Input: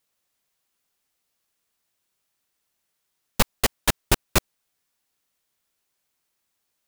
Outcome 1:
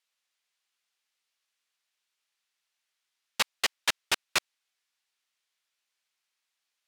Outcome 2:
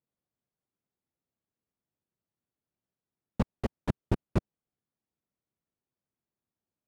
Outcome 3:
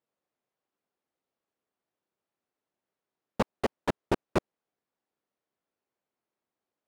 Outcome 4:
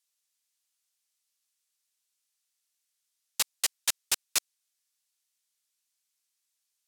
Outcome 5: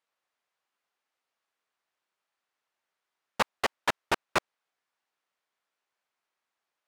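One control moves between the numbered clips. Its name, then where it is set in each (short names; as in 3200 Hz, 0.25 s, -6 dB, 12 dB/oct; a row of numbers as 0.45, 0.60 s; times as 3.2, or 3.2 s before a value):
band-pass, frequency: 2900, 150, 390, 7200, 1100 Hz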